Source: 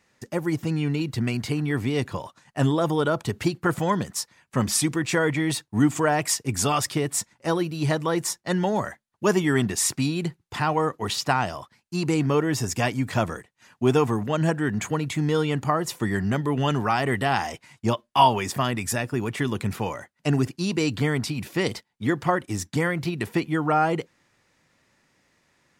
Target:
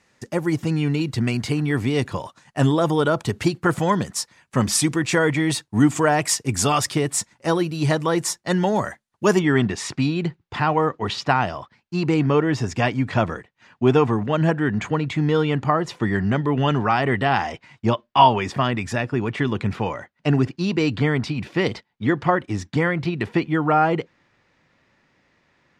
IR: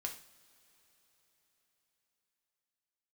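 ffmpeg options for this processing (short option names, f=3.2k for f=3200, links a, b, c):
-af "asetnsamples=n=441:p=0,asendcmd='9.39 lowpass f 3800',lowpass=11k,volume=3.5dB"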